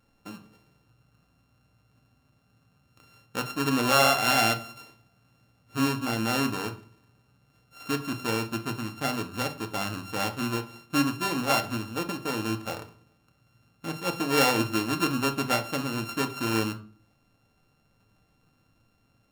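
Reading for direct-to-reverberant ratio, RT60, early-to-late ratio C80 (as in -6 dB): 5.0 dB, 0.40 s, 19.0 dB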